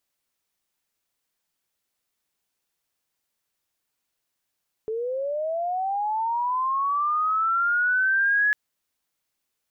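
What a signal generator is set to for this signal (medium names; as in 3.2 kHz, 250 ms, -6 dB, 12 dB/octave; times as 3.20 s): sweep linear 430 Hz -> 1.7 kHz -25.5 dBFS -> -17.5 dBFS 3.65 s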